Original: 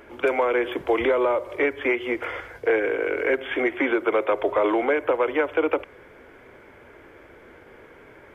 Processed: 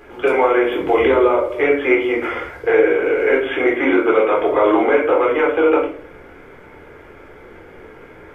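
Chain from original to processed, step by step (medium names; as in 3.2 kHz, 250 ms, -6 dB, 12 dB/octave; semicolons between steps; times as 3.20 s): simulated room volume 460 m³, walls furnished, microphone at 3.9 m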